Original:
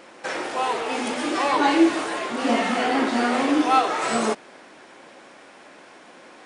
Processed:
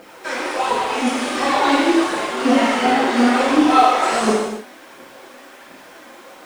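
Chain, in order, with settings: phaser 1.4 Hz, delay 4.2 ms, feedback 69%; added noise white -58 dBFS; non-linear reverb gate 0.33 s falling, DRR -4.5 dB; gain -3.5 dB

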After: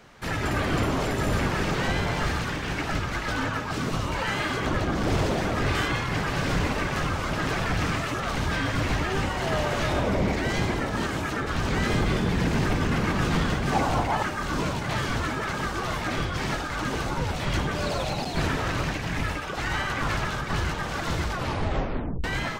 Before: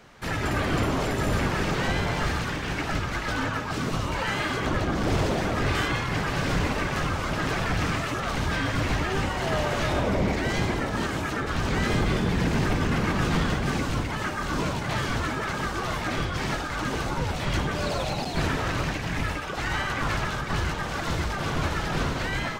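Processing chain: 13.72–14.23 bell 770 Hz +14.5 dB 0.82 oct; 21.29 tape stop 0.95 s

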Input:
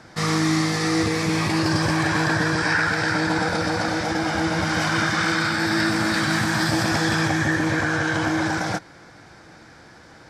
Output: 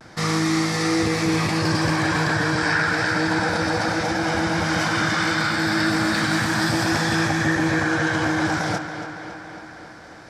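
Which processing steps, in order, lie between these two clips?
in parallel at -3 dB: limiter -18.5 dBFS, peak gain reduction 8.5 dB; on the sum: vibrato 0.31 Hz 25 cents; tape echo 0.277 s, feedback 72%, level -8.5 dB, low-pass 5000 Hz; gain -3 dB

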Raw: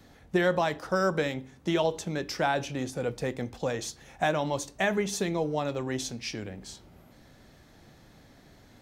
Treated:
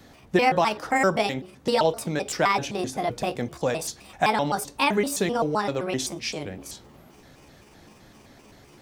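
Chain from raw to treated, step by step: trilling pitch shifter +6 st, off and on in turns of 0.129 s; low shelf 120 Hz -4.5 dB; gain +5.5 dB

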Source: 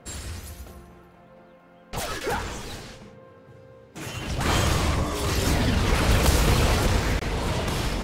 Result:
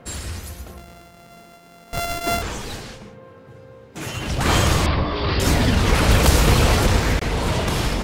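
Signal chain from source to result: 0.77–2.42 sample sorter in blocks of 64 samples; 4.86–5.4 Chebyshev low-pass 4900 Hz, order 6; gain +5 dB

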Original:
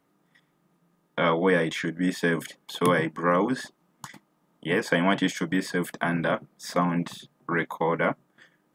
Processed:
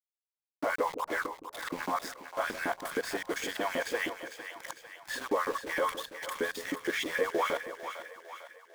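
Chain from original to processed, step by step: whole clip reversed; low shelf 170 Hz -5 dB; in parallel at -1 dB: compressor 6:1, threshold -32 dBFS, peak gain reduction 13.5 dB; on the sum: limiter -16.5 dBFS, peak gain reduction 8 dB; LFO high-pass saw up 6.4 Hz 300–2500 Hz; sample gate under -32 dBFS; on a send: split-band echo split 560 Hz, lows 0.165 s, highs 0.451 s, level -9.5 dB; on the sum: gain -7 dB

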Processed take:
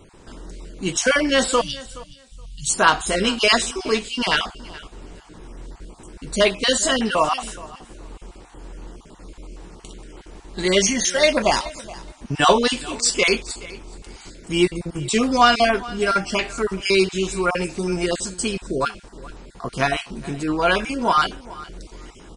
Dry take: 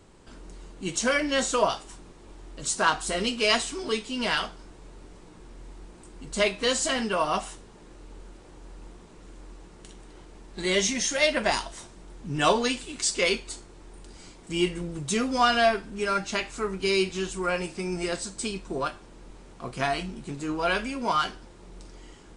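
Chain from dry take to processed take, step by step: random spectral dropouts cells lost 23%; 1.61–2.7 Chebyshev band-stop 160–3000 Hz, order 3; feedback echo 0.422 s, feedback 17%, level -19.5 dB; gain +7.5 dB

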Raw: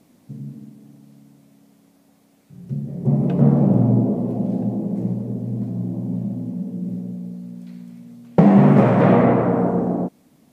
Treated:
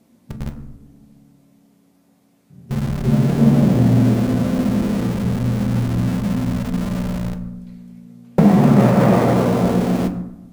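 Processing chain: in parallel at -4.5 dB: Schmitt trigger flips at -27 dBFS; on the sum: bell 180 Hz +2.5 dB 0.95 oct; reverb RT60 0.90 s, pre-delay 6 ms, DRR 5.5 dB; gain -3 dB

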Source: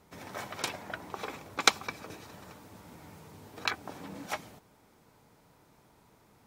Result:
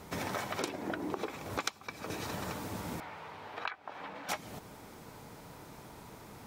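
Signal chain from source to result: 0.59–1.27 bell 320 Hz +14 dB 1.2 oct; compressor 12:1, threshold -45 dBFS, peak gain reduction 29.5 dB; 3–4.29 three-band isolator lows -17 dB, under 580 Hz, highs -23 dB, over 3600 Hz; gain +12 dB

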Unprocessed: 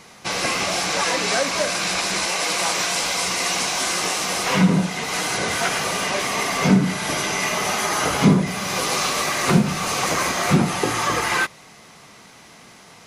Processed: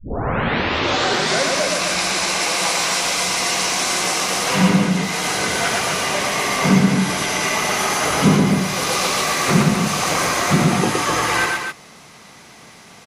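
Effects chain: tape start at the beginning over 1.43 s; loudspeakers at several distances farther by 40 m -2 dB, 88 m -6 dB

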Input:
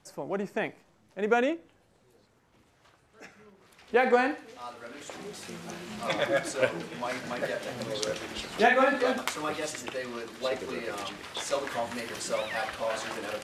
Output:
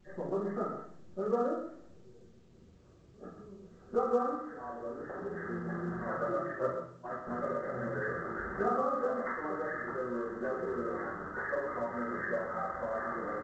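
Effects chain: nonlinear frequency compression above 1100 Hz 4:1; 6.15–7.27 gate -30 dBFS, range -27 dB; low-pass opened by the level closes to 340 Hz, open at -25.5 dBFS; dynamic EQ 1700 Hz, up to -4 dB, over -44 dBFS, Q 2.5; compressor 2:1, threshold -47 dBFS, peak gain reduction 16.5 dB; echo 0.129 s -8.5 dB; shoebox room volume 43 m³, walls mixed, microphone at 1.3 m; gain -2 dB; A-law 128 kbps 16000 Hz

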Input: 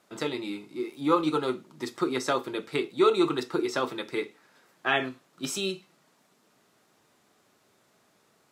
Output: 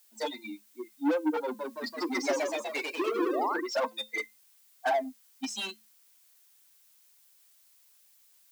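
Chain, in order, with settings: per-bin expansion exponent 3; treble ducked by the level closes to 370 Hz, closed at -27 dBFS; bell 550 Hz +13 dB 1 oct; compressor, threshold -26 dBFS, peak gain reduction 10 dB; overdrive pedal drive 28 dB, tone 7300 Hz, clips at -18 dBFS; 3.18–3.61 painted sound rise 280–2000 Hz -31 dBFS; rippled Chebyshev high-pass 210 Hz, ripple 9 dB; added noise blue -64 dBFS; resonator 520 Hz, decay 0.2 s, harmonics all, mix 50%; 1.42–3.54 echoes that change speed 0.168 s, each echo +1 st, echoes 3; gain +7 dB

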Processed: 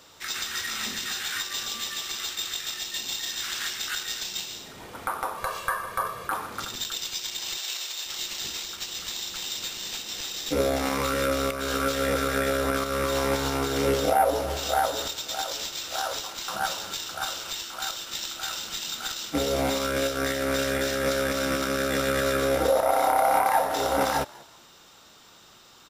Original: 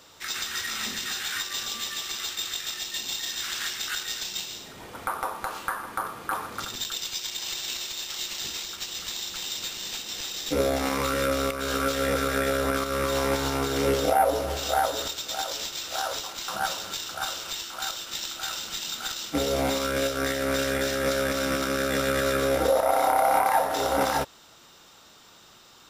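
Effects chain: 5.37–6.28 comb 1.8 ms, depth 85%; 7.57–8.06 HPF 490 Hz 12 dB/oct; on a send: frequency-shifting echo 0.193 s, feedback 32%, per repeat +70 Hz, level -23 dB

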